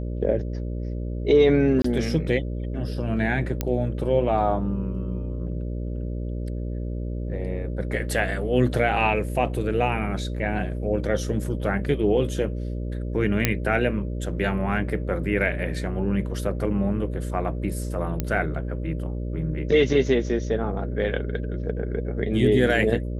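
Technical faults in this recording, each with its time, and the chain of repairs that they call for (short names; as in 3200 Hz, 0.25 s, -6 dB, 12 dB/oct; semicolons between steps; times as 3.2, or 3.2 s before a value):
buzz 60 Hz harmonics 10 -29 dBFS
1.82–1.84 gap 24 ms
3.61 pop -10 dBFS
13.45 pop -3 dBFS
18.2 pop -11 dBFS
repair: de-click; de-hum 60 Hz, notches 10; interpolate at 1.82, 24 ms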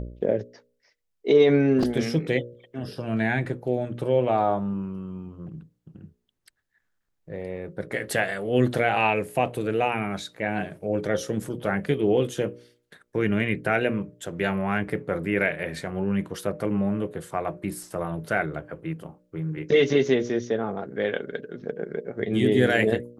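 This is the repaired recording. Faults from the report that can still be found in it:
none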